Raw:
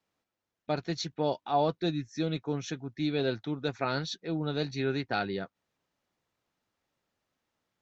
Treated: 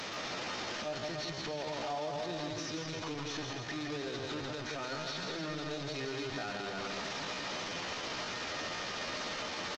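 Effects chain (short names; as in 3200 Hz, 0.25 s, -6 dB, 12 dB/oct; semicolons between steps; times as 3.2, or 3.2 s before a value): delta modulation 32 kbps, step -26.5 dBFS; low shelf 130 Hz -11 dB; resonator 610 Hz, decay 0.23 s, harmonics all, mix 70%; on a send: bouncing-ball echo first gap 0.13 s, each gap 0.8×, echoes 5; on the sum: tempo 0.8×; in parallel at -11.5 dB: hard clip -34 dBFS, distortion -15 dB; on the sum: limiter -29.5 dBFS, peak gain reduction 6.5 dB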